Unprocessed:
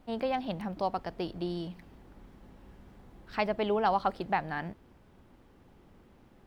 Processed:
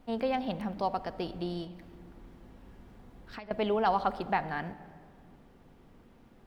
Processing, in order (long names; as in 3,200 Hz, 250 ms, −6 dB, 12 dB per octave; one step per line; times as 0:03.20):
0:01.64–0:03.51: downward compressor 16 to 1, threshold −42 dBFS, peak gain reduction 18.5 dB
convolution reverb RT60 2.3 s, pre-delay 4 ms, DRR 11 dB